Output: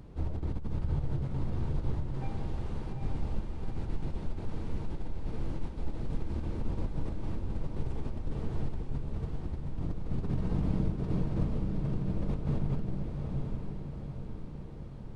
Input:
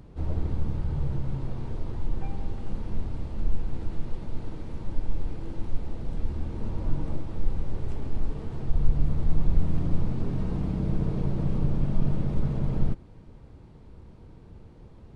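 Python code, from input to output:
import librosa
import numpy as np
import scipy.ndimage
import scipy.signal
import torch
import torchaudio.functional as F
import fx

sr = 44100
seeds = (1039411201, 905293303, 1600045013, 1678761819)

y = fx.low_shelf(x, sr, hz=190.0, db=-10.5, at=(2.13, 2.92))
y = fx.over_compress(y, sr, threshold_db=-27.0, ratio=-1.0)
y = fx.echo_diffused(y, sr, ms=840, feedback_pct=54, wet_db=-3.5)
y = y * librosa.db_to_amplitude(-5.5)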